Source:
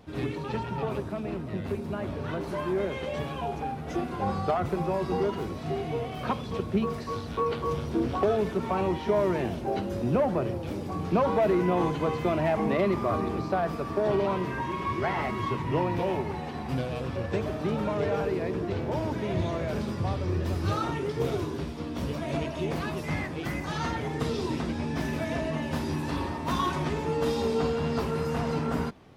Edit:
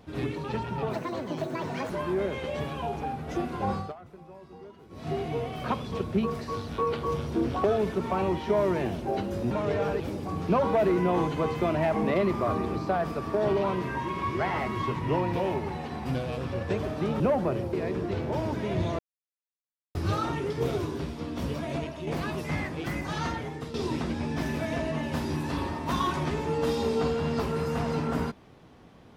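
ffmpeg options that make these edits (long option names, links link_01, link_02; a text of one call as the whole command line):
ffmpeg -i in.wav -filter_complex "[0:a]asplit=13[link_01][link_02][link_03][link_04][link_05][link_06][link_07][link_08][link_09][link_10][link_11][link_12][link_13];[link_01]atrim=end=0.934[link_14];[link_02]atrim=start=0.93:end=2.49,asetpts=PTS-STARTPTS,asetrate=71001,aresample=44100,atrim=end_sample=42730,asetpts=PTS-STARTPTS[link_15];[link_03]atrim=start=2.486:end=4.53,asetpts=PTS-STARTPTS,afade=type=out:start_time=1.844:duration=0.2:silence=0.105925[link_16];[link_04]atrim=start=4.53:end=5.48,asetpts=PTS-STARTPTS,volume=-19.5dB[link_17];[link_05]atrim=start=5.48:end=10.102,asetpts=PTS-STARTPTS,afade=type=in:duration=0.2:silence=0.105925[link_18];[link_06]atrim=start=17.828:end=18.322[link_19];[link_07]atrim=start=10.628:end=17.832[link_20];[link_08]atrim=start=10.098:end=10.632[link_21];[link_09]atrim=start=18.318:end=19.58,asetpts=PTS-STARTPTS,afade=type=out:start_time=1.258:duration=0.004:curve=hsin[link_22];[link_10]atrim=start=19.58:end=20.54,asetpts=PTS-STARTPTS,volume=0[link_23];[link_11]atrim=start=20.54:end=22.66,asetpts=PTS-STARTPTS,afade=type=in:duration=0.004:curve=hsin,afade=type=out:start_time=1.65:duration=0.47:silence=0.446684[link_24];[link_12]atrim=start=22.66:end=24.33,asetpts=PTS-STARTPTS,afade=type=in:duration=0.004:curve=hsin:silence=0.446684,afade=type=out:start_time=1.16:duration=0.51:silence=0.251189[link_25];[link_13]atrim=start=24.33,asetpts=PTS-STARTPTS,afade=type=in:duration=0.004:curve=hsin:silence=0.251189[link_26];[link_14][link_15]acrossfade=duration=0.004:curve1=hsin:curve2=hsin[link_27];[link_16][link_17][link_18]concat=n=3:v=0:a=1[link_28];[link_27][link_28]acrossfade=duration=0.004:curve1=hsin:curve2=hsin[link_29];[link_29][link_19]acrossfade=duration=0.004:curve1=hsin:curve2=hsin[link_30];[link_30][link_20]acrossfade=duration=0.004:curve1=hsin:curve2=hsin[link_31];[link_31][link_21]acrossfade=duration=0.004:curve1=hsin:curve2=hsin[link_32];[link_22][link_23][link_24][link_25][link_26]concat=n=5:v=0:a=1[link_33];[link_32][link_33]acrossfade=duration=0.004:curve1=hsin:curve2=hsin" out.wav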